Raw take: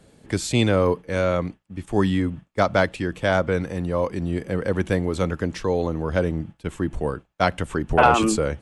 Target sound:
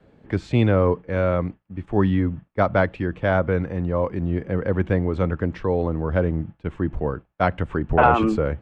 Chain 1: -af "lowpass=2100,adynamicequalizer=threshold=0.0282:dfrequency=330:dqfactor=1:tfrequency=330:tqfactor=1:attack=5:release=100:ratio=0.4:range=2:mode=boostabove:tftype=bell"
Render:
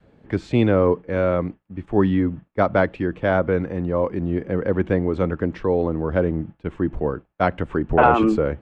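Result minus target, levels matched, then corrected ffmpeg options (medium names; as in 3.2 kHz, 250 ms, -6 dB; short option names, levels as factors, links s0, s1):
125 Hz band -3.5 dB
-af "lowpass=2100,adynamicequalizer=threshold=0.0282:dfrequency=93:dqfactor=1:tfrequency=93:tqfactor=1:attack=5:release=100:ratio=0.4:range=2:mode=boostabove:tftype=bell"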